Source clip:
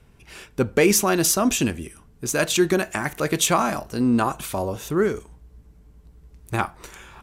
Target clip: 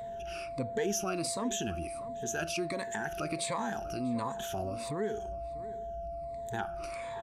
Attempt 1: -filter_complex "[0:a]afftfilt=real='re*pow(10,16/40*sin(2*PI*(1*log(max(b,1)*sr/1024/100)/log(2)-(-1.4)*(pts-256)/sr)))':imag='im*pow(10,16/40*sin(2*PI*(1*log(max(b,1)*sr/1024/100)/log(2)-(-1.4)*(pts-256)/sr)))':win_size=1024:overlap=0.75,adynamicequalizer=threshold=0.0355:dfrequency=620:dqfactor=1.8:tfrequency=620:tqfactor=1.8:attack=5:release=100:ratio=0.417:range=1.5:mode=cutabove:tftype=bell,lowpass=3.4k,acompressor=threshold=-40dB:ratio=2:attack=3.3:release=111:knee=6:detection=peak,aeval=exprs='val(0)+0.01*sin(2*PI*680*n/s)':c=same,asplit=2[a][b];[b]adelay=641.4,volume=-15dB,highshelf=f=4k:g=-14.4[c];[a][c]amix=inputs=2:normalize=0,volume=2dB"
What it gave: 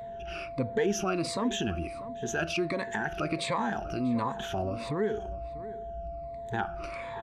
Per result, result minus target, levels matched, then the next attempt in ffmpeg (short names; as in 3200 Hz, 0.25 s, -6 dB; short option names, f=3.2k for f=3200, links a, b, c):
8000 Hz band -6.5 dB; compressor: peak gain reduction -5 dB
-filter_complex "[0:a]afftfilt=real='re*pow(10,16/40*sin(2*PI*(1*log(max(b,1)*sr/1024/100)/log(2)-(-1.4)*(pts-256)/sr)))':imag='im*pow(10,16/40*sin(2*PI*(1*log(max(b,1)*sr/1024/100)/log(2)-(-1.4)*(pts-256)/sr)))':win_size=1024:overlap=0.75,adynamicequalizer=threshold=0.0355:dfrequency=620:dqfactor=1.8:tfrequency=620:tqfactor=1.8:attack=5:release=100:ratio=0.417:range=1.5:mode=cutabove:tftype=bell,lowpass=8.8k,acompressor=threshold=-40dB:ratio=2:attack=3.3:release=111:knee=6:detection=peak,aeval=exprs='val(0)+0.01*sin(2*PI*680*n/s)':c=same,asplit=2[a][b];[b]adelay=641.4,volume=-15dB,highshelf=f=4k:g=-14.4[c];[a][c]amix=inputs=2:normalize=0,volume=2dB"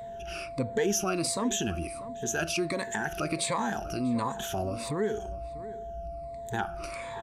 compressor: peak gain reduction -5 dB
-filter_complex "[0:a]afftfilt=real='re*pow(10,16/40*sin(2*PI*(1*log(max(b,1)*sr/1024/100)/log(2)-(-1.4)*(pts-256)/sr)))':imag='im*pow(10,16/40*sin(2*PI*(1*log(max(b,1)*sr/1024/100)/log(2)-(-1.4)*(pts-256)/sr)))':win_size=1024:overlap=0.75,adynamicequalizer=threshold=0.0355:dfrequency=620:dqfactor=1.8:tfrequency=620:tqfactor=1.8:attack=5:release=100:ratio=0.417:range=1.5:mode=cutabove:tftype=bell,lowpass=8.8k,acompressor=threshold=-50dB:ratio=2:attack=3.3:release=111:knee=6:detection=peak,aeval=exprs='val(0)+0.01*sin(2*PI*680*n/s)':c=same,asplit=2[a][b];[b]adelay=641.4,volume=-15dB,highshelf=f=4k:g=-14.4[c];[a][c]amix=inputs=2:normalize=0,volume=2dB"